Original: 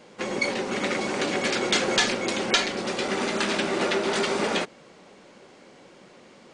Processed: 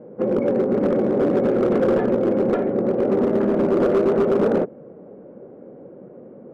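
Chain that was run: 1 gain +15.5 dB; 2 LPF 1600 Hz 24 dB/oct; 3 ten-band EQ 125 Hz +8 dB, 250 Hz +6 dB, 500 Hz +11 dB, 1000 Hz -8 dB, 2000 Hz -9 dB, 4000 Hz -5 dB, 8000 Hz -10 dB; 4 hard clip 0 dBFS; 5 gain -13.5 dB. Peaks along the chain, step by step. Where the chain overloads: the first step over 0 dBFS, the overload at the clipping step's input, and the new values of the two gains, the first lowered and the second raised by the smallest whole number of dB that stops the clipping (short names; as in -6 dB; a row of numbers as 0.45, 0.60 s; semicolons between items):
+8.5, +1.5, +8.0, 0.0, -13.5 dBFS; step 1, 8.0 dB; step 1 +7.5 dB, step 5 -5.5 dB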